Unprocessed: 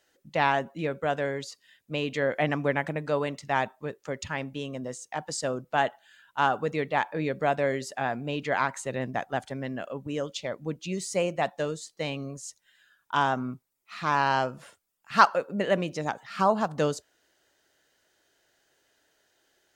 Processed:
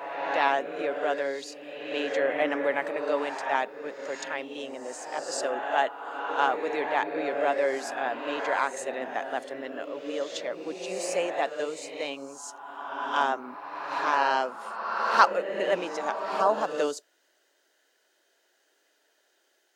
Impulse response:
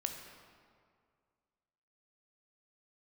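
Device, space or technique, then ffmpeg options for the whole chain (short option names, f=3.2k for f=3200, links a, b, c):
ghost voice: -filter_complex "[0:a]areverse[a];[1:a]atrim=start_sample=2205[b];[a][b]afir=irnorm=-1:irlink=0,areverse,highpass=f=300:w=0.5412,highpass=f=300:w=1.3066"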